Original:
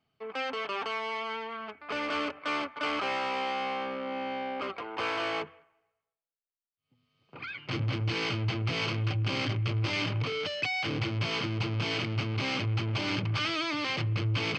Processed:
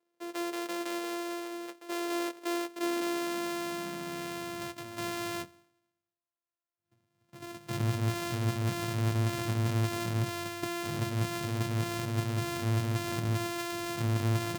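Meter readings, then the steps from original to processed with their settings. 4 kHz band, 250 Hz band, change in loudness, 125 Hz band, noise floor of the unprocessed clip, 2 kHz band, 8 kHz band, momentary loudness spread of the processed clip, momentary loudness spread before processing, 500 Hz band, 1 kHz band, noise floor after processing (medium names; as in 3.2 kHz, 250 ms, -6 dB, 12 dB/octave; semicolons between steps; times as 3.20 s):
-7.0 dB, +2.0 dB, -2.0 dB, 0.0 dB, under -85 dBFS, -6.5 dB, no reading, 8 LU, 6 LU, -0.5 dB, -4.0 dB, under -85 dBFS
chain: sorted samples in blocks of 128 samples; high-pass sweep 380 Hz -> 110 Hz, 2.61–4.68 s; trim -4.5 dB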